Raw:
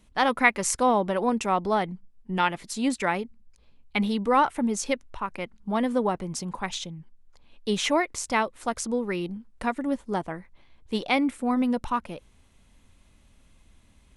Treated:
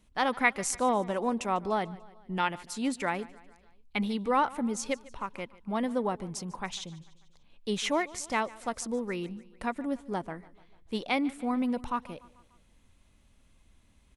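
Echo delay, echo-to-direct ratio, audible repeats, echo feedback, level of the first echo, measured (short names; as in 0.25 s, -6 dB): 0.147 s, -19.5 dB, 3, 56%, -21.0 dB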